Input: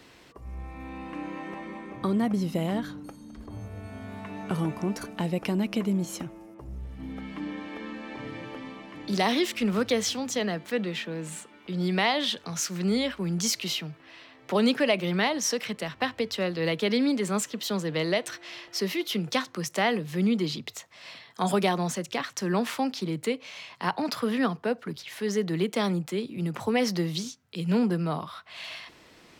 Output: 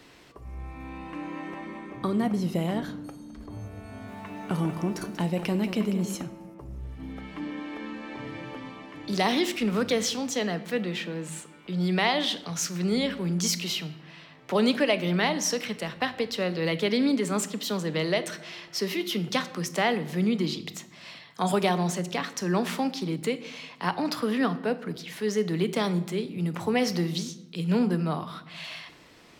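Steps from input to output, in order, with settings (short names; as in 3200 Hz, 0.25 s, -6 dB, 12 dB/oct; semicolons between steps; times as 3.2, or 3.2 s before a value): shoebox room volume 350 m³, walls mixed, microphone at 0.32 m; 3.89–6.15 lo-fi delay 0.187 s, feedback 35%, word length 9-bit, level -10.5 dB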